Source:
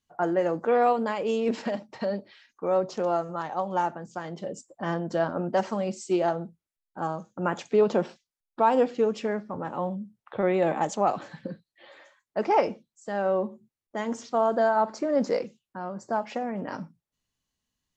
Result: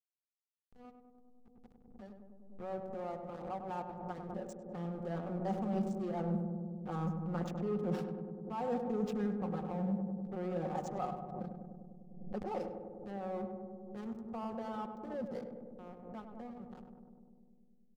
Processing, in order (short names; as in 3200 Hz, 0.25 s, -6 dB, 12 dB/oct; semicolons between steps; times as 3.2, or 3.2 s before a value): opening faded in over 5.72 s; Doppler pass-by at 7.04, 6 m/s, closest 2.9 m; high shelf 5600 Hz +9 dB; comb 5.5 ms, depth 86%; dynamic EQ 160 Hz, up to +5 dB, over -50 dBFS, Q 3.7; reverse; compressor 16:1, threshold -42 dBFS, peak gain reduction 24 dB; reverse; backlash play -46 dBFS; small resonant body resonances 220/460/770/1200 Hz, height 9 dB, ringing for 30 ms; on a send: darkening echo 0.1 s, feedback 82%, low-pass 1100 Hz, level -5.5 dB; on the sum: backwards sustainer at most 59 dB/s; gain +3 dB